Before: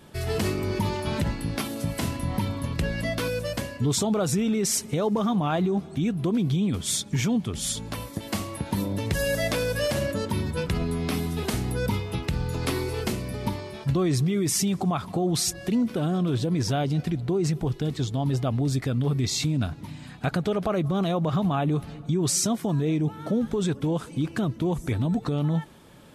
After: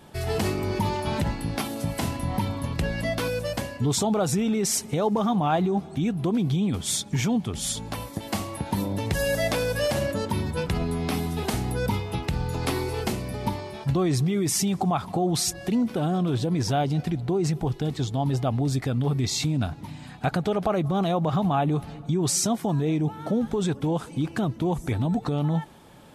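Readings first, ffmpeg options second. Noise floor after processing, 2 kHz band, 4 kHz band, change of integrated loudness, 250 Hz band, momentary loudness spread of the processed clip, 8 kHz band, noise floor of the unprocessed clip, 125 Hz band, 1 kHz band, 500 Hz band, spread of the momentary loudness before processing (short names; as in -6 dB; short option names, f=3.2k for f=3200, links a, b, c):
-42 dBFS, 0.0 dB, 0.0 dB, +0.5 dB, 0.0 dB, 6 LU, 0.0 dB, -42 dBFS, 0.0 dB, +4.0 dB, +1.0 dB, 6 LU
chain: -af "equalizer=f=800:t=o:w=0.45:g=6.5"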